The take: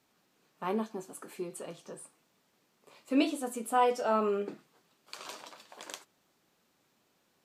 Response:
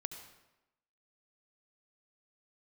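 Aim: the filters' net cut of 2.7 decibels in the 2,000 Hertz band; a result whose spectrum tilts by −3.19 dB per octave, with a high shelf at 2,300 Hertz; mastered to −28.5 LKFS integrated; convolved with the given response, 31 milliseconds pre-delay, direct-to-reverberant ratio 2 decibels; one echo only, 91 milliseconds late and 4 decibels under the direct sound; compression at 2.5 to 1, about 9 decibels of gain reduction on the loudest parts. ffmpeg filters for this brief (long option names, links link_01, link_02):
-filter_complex "[0:a]equalizer=frequency=2000:width_type=o:gain=-7.5,highshelf=frequency=2300:gain=5.5,acompressor=threshold=-35dB:ratio=2.5,aecho=1:1:91:0.631,asplit=2[link_01][link_02];[1:a]atrim=start_sample=2205,adelay=31[link_03];[link_02][link_03]afir=irnorm=-1:irlink=0,volume=-0.5dB[link_04];[link_01][link_04]amix=inputs=2:normalize=0,volume=8.5dB"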